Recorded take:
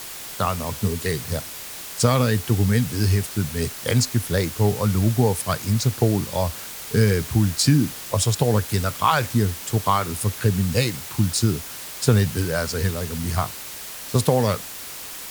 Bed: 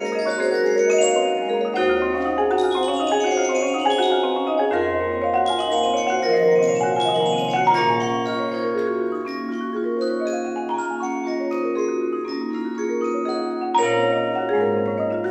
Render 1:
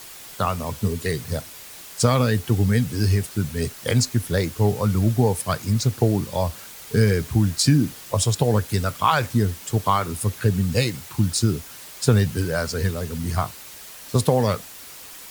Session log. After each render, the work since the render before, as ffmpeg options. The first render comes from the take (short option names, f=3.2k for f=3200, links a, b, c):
-af "afftdn=nr=6:nf=-36"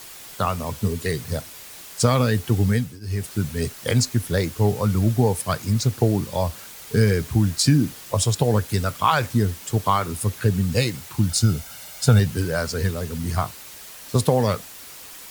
-filter_complex "[0:a]asettb=1/sr,asplit=3[a][b][c];[a]atrim=end=11.294[d];[b]atrim=start=11.29:end=12.2,asetpts=PTS-STARTPTS,afade=t=in:d=0.004:c=qsin,afade=t=out:st=0.906:d=0.004:c=qsin,aecho=1:1:1.4:0.58,atrim=end_sample=40131[e];[c]atrim=start=12.196[f];[d][e]acrossfade=d=0.004:c1=hsin:c2=qsin[g];[g][f]acrossfade=d=0.004:c1=qsin:c2=hsin,asplit=3[h][i][j];[h]atrim=end=3,asetpts=PTS-STARTPTS,afade=t=out:st=2.71:d=0.29:silence=0.0794328[k];[i]atrim=start=3:end=3.01,asetpts=PTS-STARTPTS,volume=-22dB[l];[j]atrim=start=3.01,asetpts=PTS-STARTPTS,afade=t=in:d=0.29:silence=0.0794328[m];[k][l][m]concat=n=3:v=0:a=1"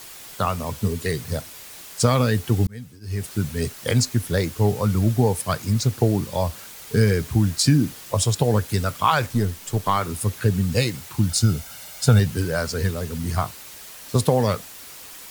-filter_complex "[0:a]asettb=1/sr,asplit=3[a][b][c];[a]atrim=end=9.264[d];[b]atrim=start=9.26:end=9.97,asetpts=PTS-STARTPTS,afade=t=in:d=0.004:c=qsin,afade=t=out:st=0.706:d=0.004:c=qsin,aeval=exprs='if(lt(val(0),0),0.708*val(0),val(0))':c=same[e];[c]atrim=start=9.966[f];[d][e]acrossfade=d=0.004:c1=hsin:c2=qsin[g];[g][f]acrossfade=d=0.004:c1=qsin:c2=hsin,asplit=2[h][i];[h]atrim=end=2.67,asetpts=PTS-STARTPTS,afade=t=out:st=2.666:d=0.004:c=hsin[j];[i]atrim=start=2.67,asetpts=PTS-STARTPTS,afade=t=in:d=0.56[k];[j][k]concat=n=2:v=0:a=1"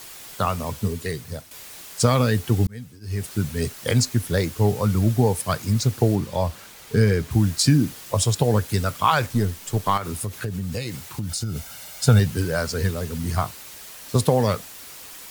-filter_complex "[0:a]asettb=1/sr,asplit=3[a][b][c];[a]atrim=end=6.154[d];[b]atrim=start=6.15:end=7.31,asetpts=PTS-STARTPTS,afade=t=in:d=0.004:c=qsin,afade=t=out:st=1.156:d=0.004:c=qsin,highshelf=f=5.4k:g=-6.5[e];[c]atrim=start=7.306[f];[d][e]acrossfade=d=0.004:c1=hsin:c2=qsin[g];[g][f]acrossfade=d=0.004:c1=qsin:c2=hsin,asettb=1/sr,asplit=3[h][i][j];[h]atrim=end=9.974[k];[i]atrim=start=9.97:end=11.56,asetpts=PTS-STARTPTS,afade=t=in:d=0.004:c=qsin,afade=t=out:st=1.586:d=0.004:c=qsin,acompressor=threshold=-24dB:ratio=6:attack=3.2:release=140:knee=1:detection=peak[l];[j]atrim=start=11.556[m];[k][l]acrossfade=d=0.004:c1=hsin:c2=qsin[n];[n][m]acrossfade=d=0.004:c1=qsin:c2=hsin,asplit=2[o][p];[o]atrim=end=1.51,asetpts=PTS-STARTPTS,afade=t=out:st=0.65:d=0.86:silence=0.354813[q];[p]atrim=start=1.51,asetpts=PTS-STARTPTS,afade=t=in:d=0.004:c=hsin:silence=0.354813[r];[q][r]concat=n=2:v=0:a=1"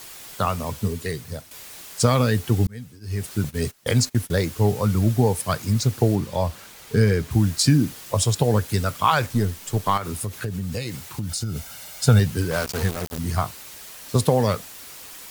-filter_complex "[0:a]asettb=1/sr,asplit=3[a][b][c];[a]atrim=end=3.444[d];[b]atrim=start=3.44:end=4.48,asetpts=PTS-STARTPTS,afade=t=in:d=0.004:c=qsin,afade=t=out:st=1.036:d=0.004:c=qsin,agate=range=-19dB:threshold=-33dB:ratio=16:release=100:detection=peak[e];[c]atrim=start=4.476[f];[d][e]acrossfade=d=0.004:c1=hsin:c2=qsin[g];[g][f]acrossfade=d=0.004:c1=qsin:c2=hsin,asettb=1/sr,asplit=3[h][i][j];[h]atrim=end=12.514[k];[i]atrim=start=12.51:end=13.18,asetpts=PTS-STARTPTS,afade=t=in:d=0.004:c=qsin,afade=t=out:st=0.666:d=0.004:c=qsin,aeval=exprs='val(0)*gte(abs(val(0)),0.0562)':c=same[l];[j]atrim=start=13.176[m];[k][l]acrossfade=d=0.004:c1=hsin:c2=qsin[n];[n][m]acrossfade=d=0.004:c1=qsin:c2=hsin"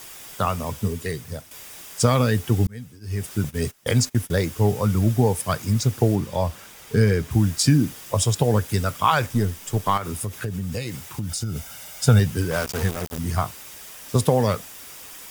-af "bandreject=f=4.2k:w=8.6"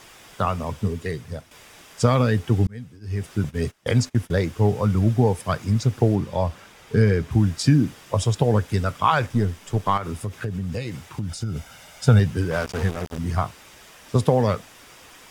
-af "aemphasis=mode=reproduction:type=50fm"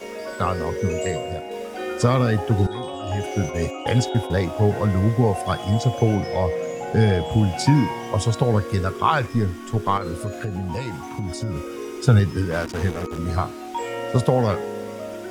-filter_complex "[1:a]volume=-10dB[a];[0:a][a]amix=inputs=2:normalize=0"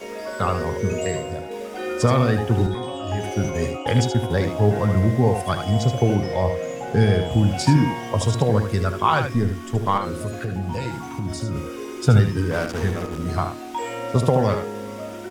-af "aecho=1:1:76:0.422"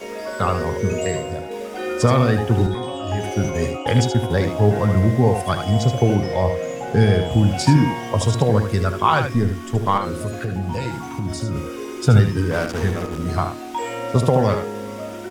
-af "volume=2dB,alimiter=limit=-2dB:level=0:latency=1"